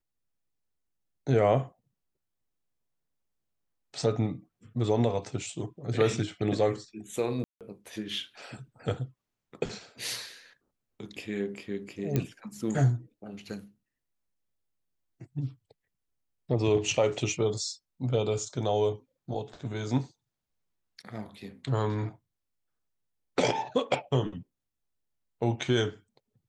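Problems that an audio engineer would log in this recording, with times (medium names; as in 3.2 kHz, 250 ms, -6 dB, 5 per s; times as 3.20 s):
7.44–7.61 s: dropout 167 ms
12.16 s: pop -14 dBFS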